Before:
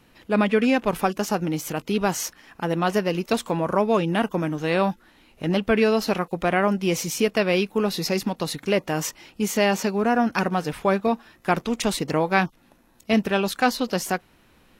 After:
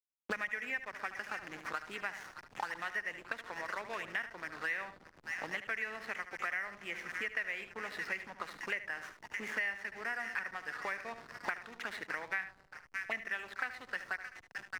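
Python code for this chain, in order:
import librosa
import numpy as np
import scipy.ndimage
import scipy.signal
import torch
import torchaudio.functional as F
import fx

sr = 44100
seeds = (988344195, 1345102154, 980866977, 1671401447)

p1 = fx.auto_wah(x, sr, base_hz=710.0, top_hz=1900.0, q=8.7, full_db=-20.0, direction='up')
p2 = p1 + fx.echo_split(p1, sr, split_hz=1200.0, low_ms=124, high_ms=618, feedback_pct=52, wet_db=-13.5, dry=0)
p3 = fx.backlash(p2, sr, play_db=-48.0)
p4 = p3 + 10.0 ** (-12.5 / 20.0) * np.pad(p3, (int(74 * sr / 1000.0), 0))[:len(p3)]
p5 = fx.band_squash(p4, sr, depth_pct=100)
y = p5 * librosa.db_to_amplitude(1.0)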